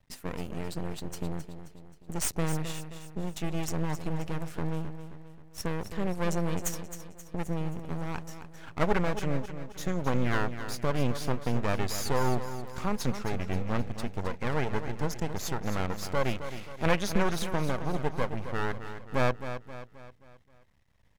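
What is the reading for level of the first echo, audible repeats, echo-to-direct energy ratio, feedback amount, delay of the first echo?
−10.5 dB, 4, −9.5 dB, 47%, 265 ms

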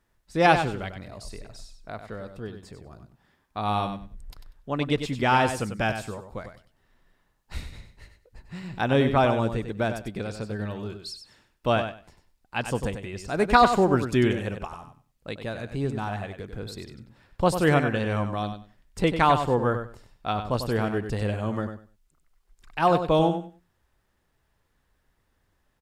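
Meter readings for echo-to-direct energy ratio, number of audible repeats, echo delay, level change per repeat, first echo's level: −8.5 dB, 2, 96 ms, −14.5 dB, −8.5 dB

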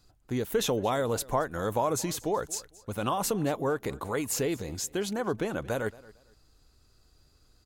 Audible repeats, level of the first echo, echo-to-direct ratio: 2, −21.0 dB, −20.5 dB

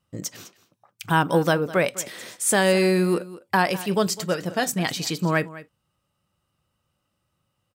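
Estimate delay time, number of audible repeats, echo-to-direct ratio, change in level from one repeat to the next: 205 ms, 1, −17.5 dB, repeats not evenly spaced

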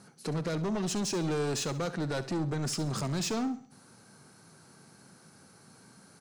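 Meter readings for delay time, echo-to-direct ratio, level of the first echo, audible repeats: 67 ms, −13.5 dB, −14.5 dB, 3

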